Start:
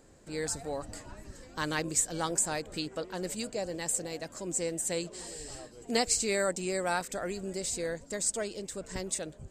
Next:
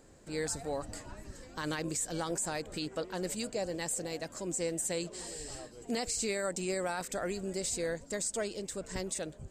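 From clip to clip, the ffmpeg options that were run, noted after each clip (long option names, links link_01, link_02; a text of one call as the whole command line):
ffmpeg -i in.wav -af "alimiter=level_in=0.5dB:limit=-24dB:level=0:latency=1:release=36,volume=-0.5dB" out.wav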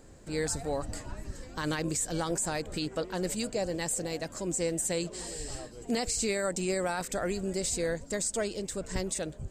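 ffmpeg -i in.wav -af "lowshelf=frequency=130:gain=6.5,volume=3dB" out.wav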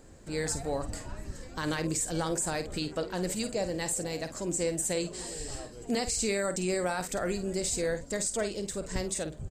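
ffmpeg -i in.wav -filter_complex "[0:a]asplit=2[link_01][link_02];[link_02]adelay=50,volume=-10.5dB[link_03];[link_01][link_03]amix=inputs=2:normalize=0" out.wav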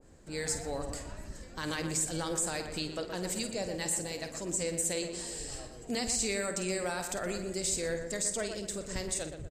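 ffmpeg -i in.wav -filter_complex "[0:a]asplit=2[link_01][link_02];[link_02]adelay=120,lowpass=frequency=2000:poles=1,volume=-6.5dB,asplit=2[link_03][link_04];[link_04]adelay=120,lowpass=frequency=2000:poles=1,volume=0.44,asplit=2[link_05][link_06];[link_06]adelay=120,lowpass=frequency=2000:poles=1,volume=0.44,asplit=2[link_07][link_08];[link_08]adelay=120,lowpass=frequency=2000:poles=1,volume=0.44,asplit=2[link_09][link_10];[link_10]adelay=120,lowpass=frequency=2000:poles=1,volume=0.44[link_11];[link_01][link_03][link_05][link_07][link_09][link_11]amix=inputs=6:normalize=0,aresample=32000,aresample=44100,adynamicequalizer=threshold=0.00398:dfrequency=1600:dqfactor=0.7:tfrequency=1600:tqfactor=0.7:attack=5:release=100:ratio=0.375:range=2.5:mode=boostabove:tftype=highshelf,volume=-5dB" out.wav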